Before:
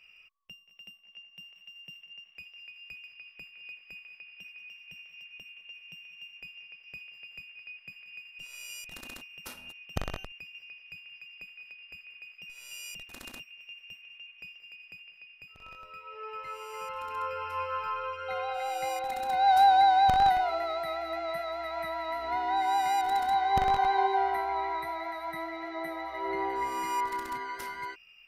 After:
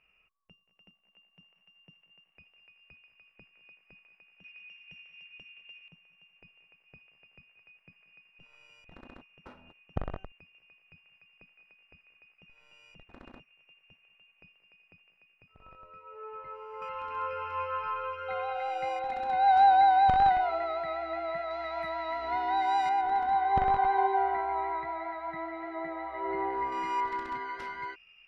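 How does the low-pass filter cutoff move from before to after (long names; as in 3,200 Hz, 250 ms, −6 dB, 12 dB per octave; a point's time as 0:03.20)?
1,300 Hz
from 0:04.44 2,600 Hz
from 0:05.88 1,200 Hz
from 0:16.82 2,700 Hz
from 0:21.51 4,500 Hz
from 0:22.89 2,000 Hz
from 0:26.72 3,200 Hz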